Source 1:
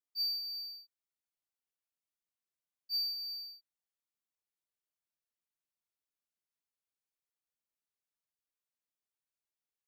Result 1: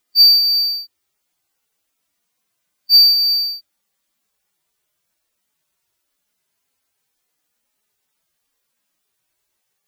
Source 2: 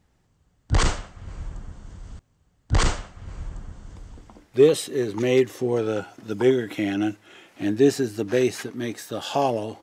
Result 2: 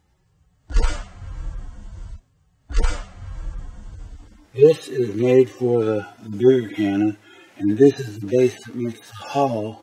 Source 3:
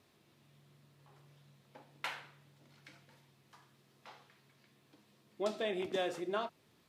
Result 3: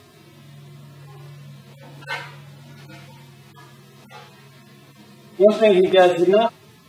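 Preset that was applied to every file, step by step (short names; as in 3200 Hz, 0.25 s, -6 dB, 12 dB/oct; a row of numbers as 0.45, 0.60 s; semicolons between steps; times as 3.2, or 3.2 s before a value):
median-filter separation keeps harmonic; normalise peaks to -2 dBFS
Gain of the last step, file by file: +24.5, +5.0, +23.0 dB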